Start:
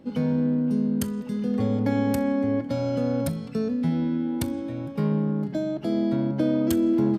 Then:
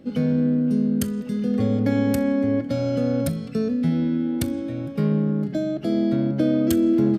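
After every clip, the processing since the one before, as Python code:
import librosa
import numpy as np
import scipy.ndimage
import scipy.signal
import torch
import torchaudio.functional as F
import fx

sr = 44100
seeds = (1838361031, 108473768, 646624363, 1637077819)

y = fx.peak_eq(x, sr, hz=930.0, db=-15.0, octaves=0.27)
y = F.gain(torch.from_numpy(y), 3.0).numpy()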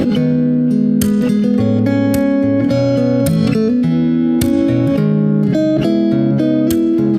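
y = fx.env_flatten(x, sr, amount_pct=100)
y = F.gain(torch.from_numpy(y), 4.0).numpy()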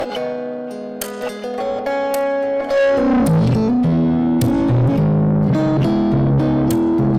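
y = fx.filter_sweep_highpass(x, sr, from_hz=700.0, to_hz=120.0, start_s=2.72, end_s=3.46, q=4.4)
y = fx.tube_stage(y, sr, drive_db=12.0, bias=0.3)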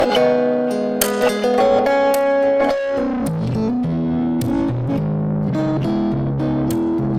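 y = fx.over_compress(x, sr, threshold_db=-21.0, ratio=-1.0)
y = F.gain(torch.from_numpy(y), 3.5).numpy()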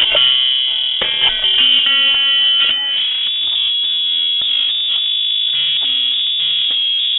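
y = fx.freq_invert(x, sr, carrier_hz=3600)
y = F.gain(torch.from_numpy(y), 2.5).numpy()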